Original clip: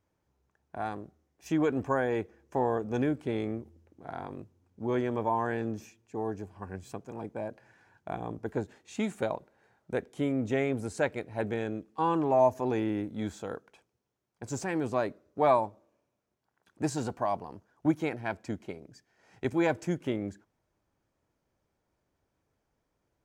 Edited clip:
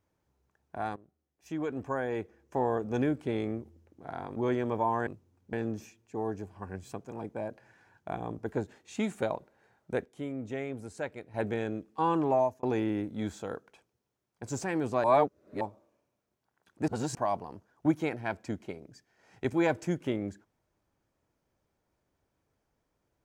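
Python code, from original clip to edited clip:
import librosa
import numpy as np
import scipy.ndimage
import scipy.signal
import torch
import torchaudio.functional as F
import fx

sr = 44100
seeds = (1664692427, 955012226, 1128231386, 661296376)

y = fx.edit(x, sr, fx.fade_in_from(start_s=0.96, length_s=1.88, floor_db=-16.5),
    fx.move(start_s=4.36, length_s=0.46, to_s=5.53),
    fx.clip_gain(start_s=10.05, length_s=1.29, db=-7.5),
    fx.fade_out_span(start_s=12.3, length_s=0.33),
    fx.reverse_span(start_s=15.04, length_s=0.57),
    fx.reverse_span(start_s=16.88, length_s=0.27), tone=tone)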